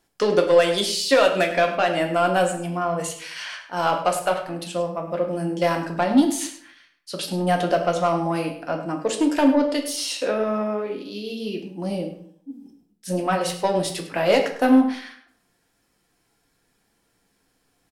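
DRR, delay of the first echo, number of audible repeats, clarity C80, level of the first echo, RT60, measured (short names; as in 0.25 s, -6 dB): 2.5 dB, 0.102 s, 1, 10.0 dB, -13.0 dB, 0.60 s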